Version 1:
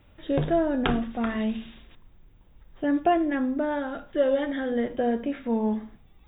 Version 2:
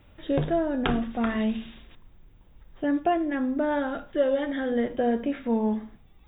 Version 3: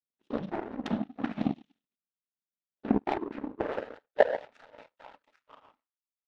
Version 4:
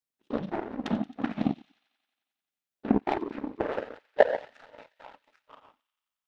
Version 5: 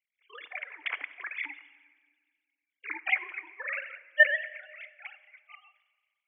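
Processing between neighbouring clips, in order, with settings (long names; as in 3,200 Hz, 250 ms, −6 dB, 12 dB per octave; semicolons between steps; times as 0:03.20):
speech leveller 0.5 s
cochlear-implant simulation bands 12; high-pass filter sweep 200 Hz → 1,100 Hz, 0:02.83–0:05.03; power curve on the samples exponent 2
delay with a high-pass on its return 89 ms, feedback 72%, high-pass 2,700 Hz, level −17 dB; level +2 dB
three sine waves on the formant tracks; high-pass with resonance 2,200 Hz, resonance Q 9; rectangular room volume 2,100 cubic metres, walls mixed, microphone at 0.4 metres; level +7.5 dB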